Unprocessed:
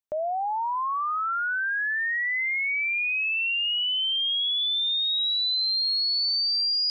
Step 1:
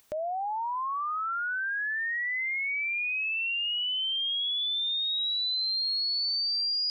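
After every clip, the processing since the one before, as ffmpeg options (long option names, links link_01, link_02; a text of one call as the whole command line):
ffmpeg -i in.wav -af "acompressor=mode=upward:threshold=-35dB:ratio=2.5,volume=-4dB" out.wav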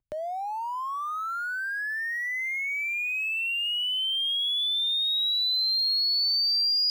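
ffmpeg -i in.wav -filter_complex "[0:a]acrossover=split=110[link_01][link_02];[link_02]aeval=exprs='sgn(val(0))*max(abs(val(0))-0.00178,0)':channel_layout=same[link_03];[link_01][link_03]amix=inputs=2:normalize=0,adynamicequalizer=threshold=0.00708:dfrequency=3300:dqfactor=0.7:tfrequency=3300:tqfactor=0.7:attack=5:release=100:ratio=0.375:range=3:mode=boostabove:tftype=highshelf" out.wav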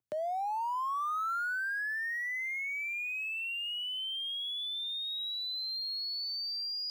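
ffmpeg -i in.wav -filter_complex "[0:a]acrossover=split=100|1200[link_01][link_02][link_03];[link_01]acrusher=bits=4:dc=4:mix=0:aa=0.000001[link_04];[link_03]alimiter=level_in=8.5dB:limit=-24dB:level=0:latency=1,volume=-8.5dB[link_05];[link_04][link_02][link_05]amix=inputs=3:normalize=0,volume=-1.5dB" out.wav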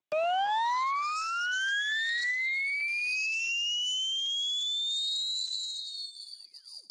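ffmpeg -i in.wav -af "aeval=exprs='0.0398*(cos(1*acos(clip(val(0)/0.0398,-1,1)))-cos(1*PI/2))+0.0112*(cos(2*acos(clip(val(0)/0.0398,-1,1)))-cos(2*PI/2))+0.00891*(cos(6*acos(clip(val(0)/0.0398,-1,1)))-cos(6*PI/2))':channel_layout=same,highpass=frequency=230:width=0.5412,highpass=frequency=230:width=1.3066,equalizer=frequency=270:width_type=q:width=4:gain=-6,equalizer=frequency=450:width_type=q:width=4:gain=-5,equalizer=frequency=1300:width_type=q:width=4:gain=-6,equalizer=frequency=6800:width_type=q:width=4:gain=-5,lowpass=frequency=9700:width=0.5412,lowpass=frequency=9700:width=1.3066,volume=6dB" -ar 32000 -c:a libspeex -b:a 15k out.spx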